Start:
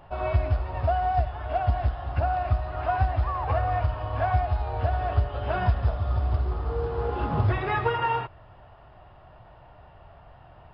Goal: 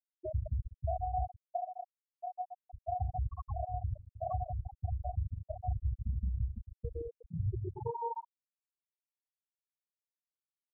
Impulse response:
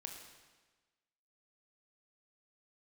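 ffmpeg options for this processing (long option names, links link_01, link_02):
-filter_complex "[1:a]atrim=start_sample=2205,afade=type=out:start_time=0.38:duration=0.01,atrim=end_sample=17199,asetrate=57330,aresample=44100[link_01];[0:a][link_01]afir=irnorm=-1:irlink=0,acrusher=bits=4:mix=0:aa=0.000001,highshelf=frequency=2700:gain=-9.5,aecho=1:1:30|66|109.2|161|223.2:0.631|0.398|0.251|0.158|0.1,acompressor=threshold=-30dB:ratio=4,asettb=1/sr,asplit=3[link_02][link_03][link_04];[link_02]atrim=end=1.374[link_05];[link_03]atrim=start=1.37:end=2.73,asetpts=PTS-STARTPTS,afade=type=in:duration=0.004:curve=qsin,afade=type=out:start_time=1.356:duration=0.004:curve=qsin,highpass=270[link_06];[link_04]atrim=start=2.726[link_07];[link_05][link_06]acrossfade=duration=0.004:curve1=hsin:curve2=qsin[link_08];[link_08][link_07]acrossfade=duration=0.004:curve1=qsin:curve2=hsin,afftfilt=real='re*gte(hypot(re,im),0.112)':imag='im*gte(hypot(re,im),0.112)':win_size=1024:overlap=0.75,volume=1dB"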